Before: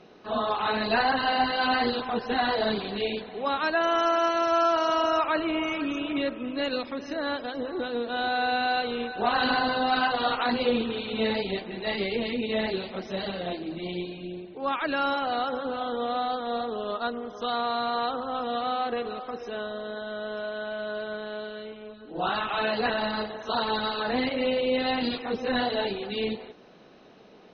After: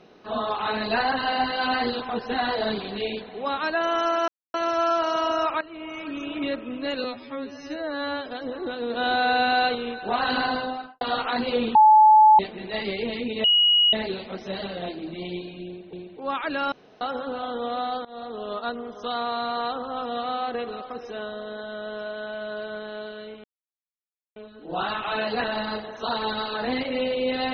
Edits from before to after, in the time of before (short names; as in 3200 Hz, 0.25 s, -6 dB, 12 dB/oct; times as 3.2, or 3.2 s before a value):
4.28 insert silence 0.26 s
5.35–6.17 fade in, from -18.5 dB
6.78–7.39 stretch 2×
8.03–8.88 gain +4.5 dB
9.62–10.14 studio fade out
10.88–11.52 bleep 862 Hz -10 dBFS
12.57 add tone 2900 Hz -15 dBFS 0.49 s
14.31–14.57 loop, 2 plays
15.1–15.39 room tone
16.43–17.01 fade in equal-power, from -20.5 dB
21.82 insert silence 0.92 s